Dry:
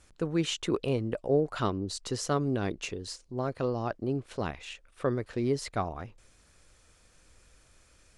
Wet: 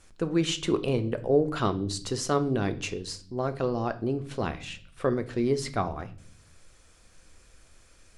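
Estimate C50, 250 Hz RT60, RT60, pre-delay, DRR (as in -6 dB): 16.5 dB, 0.85 s, 0.50 s, 3 ms, 9.5 dB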